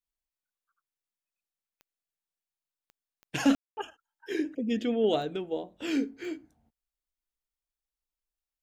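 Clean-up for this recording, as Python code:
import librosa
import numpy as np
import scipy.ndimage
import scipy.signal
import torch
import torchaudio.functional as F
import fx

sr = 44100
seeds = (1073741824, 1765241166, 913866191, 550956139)

y = fx.fix_declick_ar(x, sr, threshold=10.0)
y = fx.fix_ambience(y, sr, seeds[0], print_start_s=6.23, print_end_s=6.73, start_s=3.55, end_s=3.77)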